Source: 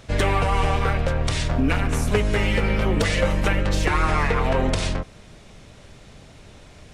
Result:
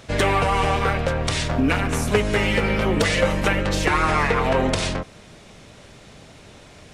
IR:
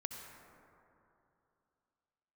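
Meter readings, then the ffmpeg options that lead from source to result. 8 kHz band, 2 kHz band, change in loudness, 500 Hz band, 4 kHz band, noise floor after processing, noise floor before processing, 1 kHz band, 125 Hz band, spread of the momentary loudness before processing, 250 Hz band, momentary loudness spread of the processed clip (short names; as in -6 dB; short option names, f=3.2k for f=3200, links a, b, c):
+3.0 dB, +3.0 dB, +1.5 dB, +2.5 dB, +3.0 dB, -46 dBFS, -47 dBFS, +3.0 dB, -1.5 dB, 3 LU, +2.0 dB, 4 LU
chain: -af "lowshelf=f=79:g=-11,volume=3dB"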